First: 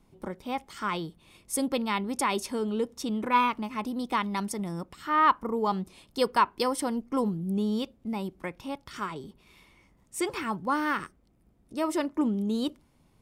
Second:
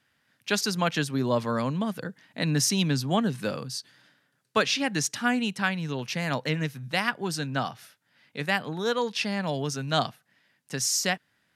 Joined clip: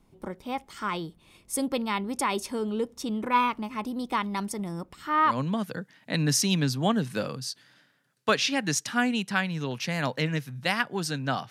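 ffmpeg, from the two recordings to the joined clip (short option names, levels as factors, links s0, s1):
-filter_complex "[0:a]apad=whole_dur=11.5,atrim=end=11.5,atrim=end=5.4,asetpts=PTS-STARTPTS[s0];[1:a]atrim=start=1.52:end=7.78,asetpts=PTS-STARTPTS[s1];[s0][s1]acrossfade=d=0.16:c1=tri:c2=tri"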